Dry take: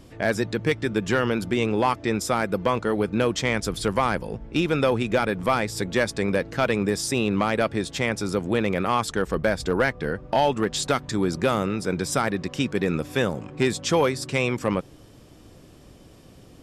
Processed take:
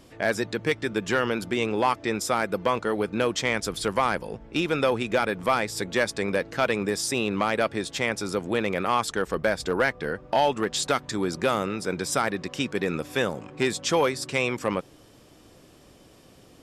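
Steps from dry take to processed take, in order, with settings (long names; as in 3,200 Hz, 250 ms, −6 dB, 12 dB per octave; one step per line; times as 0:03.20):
low-shelf EQ 230 Hz −9 dB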